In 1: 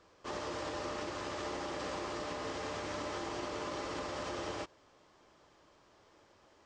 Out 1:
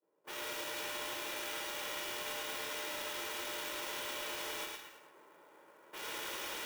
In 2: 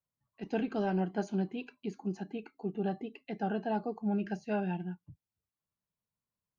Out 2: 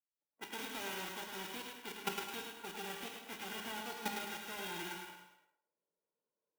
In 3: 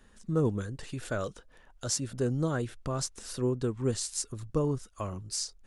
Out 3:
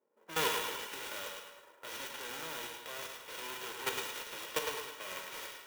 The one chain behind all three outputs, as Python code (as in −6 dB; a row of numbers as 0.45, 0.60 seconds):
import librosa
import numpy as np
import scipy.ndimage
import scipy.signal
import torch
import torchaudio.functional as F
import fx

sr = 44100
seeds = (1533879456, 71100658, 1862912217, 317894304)

y = fx.envelope_flatten(x, sr, power=0.1)
y = fx.recorder_agc(y, sr, target_db=-17.5, rise_db_per_s=12.0, max_gain_db=30)
y = fx.peak_eq(y, sr, hz=4800.0, db=-11.0, octaves=0.29)
y = fx.level_steps(y, sr, step_db=13)
y = fx.high_shelf_res(y, sr, hz=6500.0, db=-8.0, q=1.5)
y = fx.notch(y, sr, hz=4100.0, q=10.0)
y = fx.echo_thinned(y, sr, ms=107, feedback_pct=49, hz=380.0, wet_db=-5)
y = fx.env_lowpass(y, sr, base_hz=470.0, full_db=-38.0)
y = scipy.signal.sosfilt(scipy.signal.butter(4, 230.0, 'highpass', fs=sr, output='sos'), y)
y = y + 0.45 * np.pad(y, (int(2.1 * sr / 1000.0), 0))[:len(y)]
y = fx.rev_gated(y, sr, seeds[0], gate_ms=370, shape='falling', drr_db=4.0)
y = fx.clock_jitter(y, sr, seeds[1], jitter_ms=0.028)
y = F.gain(torch.from_numpy(y), -2.5).numpy()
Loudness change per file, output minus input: +0.5, −7.5, −6.0 LU